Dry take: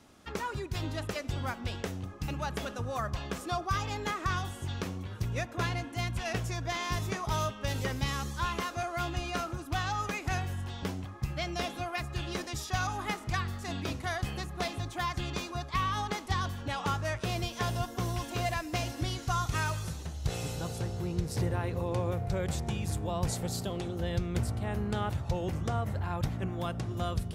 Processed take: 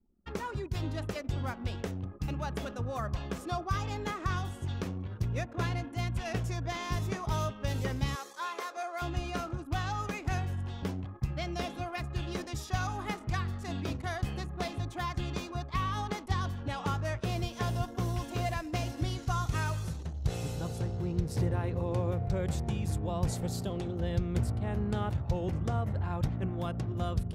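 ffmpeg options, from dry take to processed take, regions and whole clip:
-filter_complex "[0:a]asettb=1/sr,asplit=3[a][b][c];[a]atrim=end=8.154[d];[b]atrim=start=8.15:end=9.02,asetpts=PTS-STARTPTS,afade=t=in:d=0.004:c=qsin,afade=t=out:st=0.866:d=0.004:c=qsin,highpass=f=410:w=0.5412,highpass=f=410:w=1.3066,bandreject=f=2.9k:w=7.6[e];[c]atrim=start=9.016[f];[d][e]acrossfade=d=0.004:c1=hsin:c2=qsin[g];[g][f]acrossfade=d=0.004:c1=qsin:c2=hsin,anlmdn=0.0158,tiltshelf=f=670:g=3,volume=-1.5dB"

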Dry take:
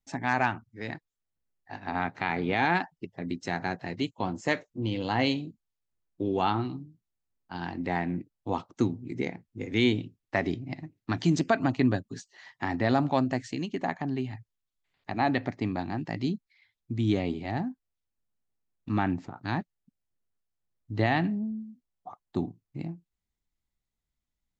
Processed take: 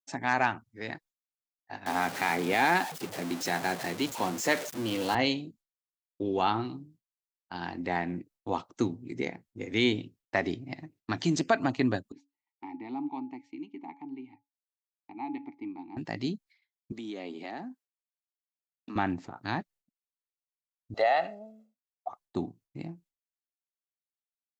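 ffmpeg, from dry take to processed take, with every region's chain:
-filter_complex "[0:a]asettb=1/sr,asplit=3[a][b][c];[a]atrim=end=1.864[d];[b]atrim=start=1.86:end=5.15,asetpts=PTS-STARTPTS,afade=t=in:d=0.004:c=qsin,afade=t=out:st=3.286:d=0.004:c=qsin,aeval=exprs='val(0)+0.5*0.0237*sgn(val(0))':c=same,highpass=140[e];[c]atrim=start=5.146[f];[d][e]acrossfade=d=0.004:c1=hsin:c2=qsin[g];[g][f]acrossfade=d=0.004:c1=qsin:c2=hsin,asettb=1/sr,asplit=3[h][i][j];[h]atrim=end=12.124[k];[i]atrim=start=12.12:end=15.97,asetpts=PTS-STARTPTS,afade=t=in:d=0.004:c=qsin,afade=t=out:st=3.846:d=0.004:c=qsin,asplit=3[l][m][n];[l]bandpass=f=300:t=q:w=8,volume=0dB[o];[m]bandpass=f=870:t=q:w=8,volume=-6dB[p];[n]bandpass=f=2.24k:t=q:w=8,volume=-9dB[q];[o][p][q]amix=inputs=3:normalize=0,bandreject=f=281.4:t=h:w=4,bandreject=f=562.8:t=h:w=4,bandreject=f=844.2:t=h:w=4[r];[j]atrim=start=15.966[s];[k][r]acrossfade=d=0.004:c1=hsin:c2=qsin[t];[t][s]acrossfade=d=0.004:c1=qsin:c2=hsin,asettb=1/sr,asplit=3[u][v][w];[u]atrim=end=16.924[x];[v]atrim=start=16.92:end=18.96,asetpts=PTS-STARTPTS,afade=t=in:d=0.004:c=qsin,afade=t=out:st=2.036:d=0.004:c=qsin,highpass=f=210:w=0.5412,highpass=f=210:w=1.3066,acompressor=threshold=-34dB:ratio=5:attack=3.2:release=140:knee=1:detection=peak[y];[w]atrim=start=18.956[z];[x][y]acrossfade=d=0.004:c1=hsin:c2=qsin[aa];[aa][z]acrossfade=d=0.004:c1=qsin:c2=hsin,asettb=1/sr,asplit=3[ab][ac][ad];[ab]atrim=end=20.944[ae];[ac]atrim=start=20.94:end=22.08,asetpts=PTS-STARTPTS,afade=t=in:d=0.004:c=qsin,afade=t=out:st=1.136:d=0.004:c=qsin,highpass=f=570:t=q:w=2.8,aecho=1:1:1.5:0.67,atrim=end_sample=50274,acompressor=threshold=-21dB:ratio=3:attack=3.2:release=140:knee=1:detection=peak[af];[ad]atrim=start=22.076[ag];[ae][af]acrossfade=d=0.004:c1=hsin:c2=qsin[ah];[ah][ag]acrossfade=d=0.004:c1=qsin:c2=hsin,agate=range=-33dB:threshold=-51dB:ratio=3:detection=peak,bass=f=250:g=-6,treble=f=4k:g=3"

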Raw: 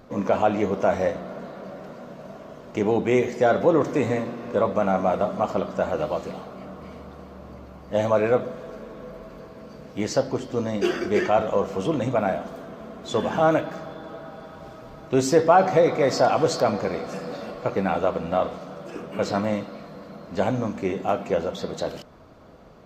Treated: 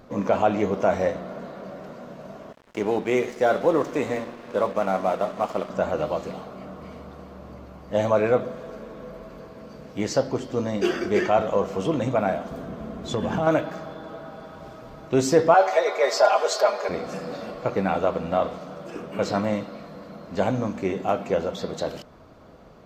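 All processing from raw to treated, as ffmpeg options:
-filter_complex "[0:a]asettb=1/sr,asplit=3[a][b][c];[a]atrim=end=2.524[d];[b]atrim=start=2.52:end=5.7,asetpts=PTS-STARTPTS,afade=t=in:d=0.004:c=qsin,afade=t=out:st=3.176:d=0.004:c=qsin,highpass=f=260:p=1,aeval=exprs='sgn(val(0))*max(abs(val(0))-0.00841,0)':c=same[e];[c]atrim=start=5.696[f];[d][e]acrossfade=d=0.004:c1=hsin:c2=qsin[g];[g][f]acrossfade=d=0.004:c1=qsin:c2=hsin,asettb=1/sr,asplit=3[h][i][j];[h]atrim=end=12.514[k];[i]atrim=start=12.51:end=13.47,asetpts=PTS-STARTPTS,afade=t=in:d=0.004:c=qsin,afade=t=out:st=0.956:d=0.004:c=qsin,lowshelf=f=220:g=11.5,asoftclip=type=hard:threshold=-9dB,acompressor=threshold=-21dB:ratio=5:attack=3.2:release=140:knee=1:detection=peak[l];[j]atrim=start=13.466[m];[k][l]acrossfade=d=0.004:c1=hsin:c2=qsin[n];[n][m]acrossfade=d=0.004:c1=qsin:c2=hsin,asettb=1/sr,asplit=3[o][p][q];[o]atrim=end=15.544[r];[p]atrim=start=15.54:end=16.89,asetpts=PTS-STARTPTS,afade=t=in:d=0.004:c=qsin,afade=t=out:st=1.346:d=0.004:c=qsin,highpass=f=470:w=0.5412,highpass=f=470:w=1.3066,aecho=1:1:4.9:0.86,atrim=end_sample=59535[s];[q]atrim=start=16.886[t];[r][s]acrossfade=d=0.004:c1=hsin:c2=qsin[u];[u][t]acrossfade=d=0.004:c1=qsin:c2=hsin"

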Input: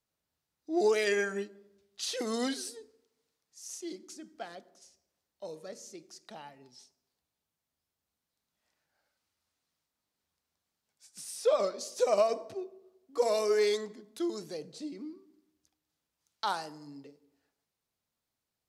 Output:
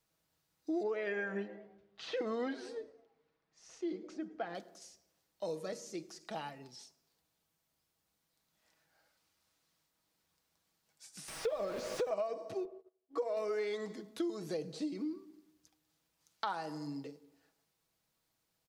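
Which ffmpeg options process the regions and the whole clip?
-filter_complex "[0:a]asettb=1/sr,asplit=3[a][b][c];[a]atrim=end=0.834[d];[b]atrim=start=0.83:end=4.55,asetpts=PTS-STARTPTS,afade=t=in:d=0.004:c=qsin,afade=t=out:st=3.716:d=0.004:c=qsin,lowpass=2.1k,asplit=4[e][f][g][h];[f]adelay=107,afreqshift=120,volume=-23dB[i];[g]adelay=214,afreqshift=240,volume=-31.2dB[j];[h]adelay=321,afreqshift=360,volume=-39.4dB[k];[e][i][j][k]amix=inputs=4:normalize=0,atrim=end_sample=164052[l];[c]atrim=start=4.546[m];[d][l]acrossfade=d=0.004:c1=hsin:c2=qsin[n];[n][m]acrossfade=d=0.004:c1=qsin:c2=hsin,asettb=1/sr,asplit=3[o][p][q];[o]atrim=end=11.284[r];[p]atrim=start=11.28:end=12.11,asetpts=PTS-STARTPTS,afade=t=in:d=0.004:c=qsin,afade=t=out:st=0.826:d=0.004:c=qsin,aeval=exprs='val(0)+0.5*0.0188*sgn(val(0))':c=same,acrossover=split=930|2900[s][t][u];[s]acompressor=threshold=-24dB:ratio=4[v];[t]acompressor=threshold=-43dB:ratio=4[w];[u]acompressor=threshold=-42dB:ratio=4[x];[v][w][x]amix=inputs=3:normalize=0[y];[q]atrim=start=12.106[z];[r][y]acrossfade=d=0.004:c1=hsin:c2=qsin[aa];[aa][z]acrossfade=d=0.004:c1=qsin:c2=hsin,asettb=1/sr,asplit=3[ab][ac][ad];[ab]atrim=end=12.654[ae];[ac]atrim=start=12.65:end=13.37,asetpts=PTS-STARTPTS,afade=t=in:d=0.004:c=qsin,afade=t=out:st=0.716:d=0.004:c=qsin,agate=range=-20dB:threshold=-58dB:ratio=16:release=100:detection=peak,lowpass=f=1.3k:p=1,equalizer=f=180:t=o:w=0.63:g=-14[af];[ad]atrim=start=13.366[ag];[ae][af]acrossfade=d=0.004:c1=hsin:c2=qsin[ah];[ah][ag]acrossfade=d=0.004:c1=qsin:c2=hsin,acrossover=split=3100[ai][aj];[aj]acompressor=threshold=-55dB:ratio=4:attack=1:release=60[ak];[ai][ak]amix=inputs=2:normalize=0,aecho=1:1:6.2:0.36,acompressor=threshold=-39dB:ratio=6,volume=5dB"

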